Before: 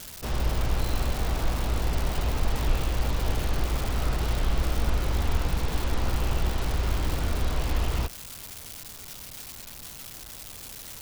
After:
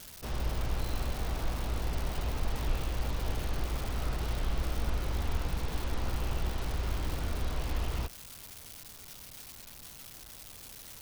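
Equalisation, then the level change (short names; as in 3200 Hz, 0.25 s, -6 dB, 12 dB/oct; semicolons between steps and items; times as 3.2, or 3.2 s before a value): notch 7300 Hz, Q 24; -6.5 dB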